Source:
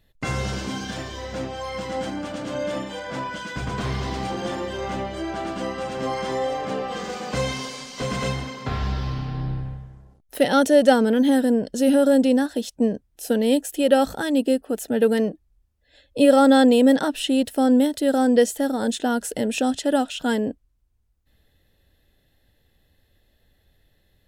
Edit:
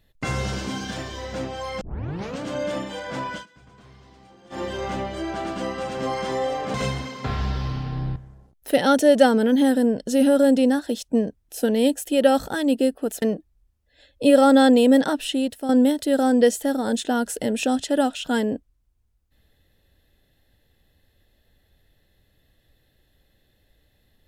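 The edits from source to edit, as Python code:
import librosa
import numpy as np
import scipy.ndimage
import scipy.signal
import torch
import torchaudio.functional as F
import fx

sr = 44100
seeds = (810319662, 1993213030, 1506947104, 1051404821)

y = fx.edit(x, sr, fx.tape_start(start_s=1.81, length_s=0.6),
    fx.fade_down_up(start_s=3.33, length_s=1.3, db=-23.0, fade_s=0.13, curve='qsin'),
    fx.cut(start_s=6.74, length_s=1.42),
    fx.cut(start_s=9.58, length_s=0.25),
    fx.cut(start_s=14.89, length_s=0.28),
    fx.fade_out_to(start_s=17.13, length_s=0.51, floor_db=-9.5), tone=tone)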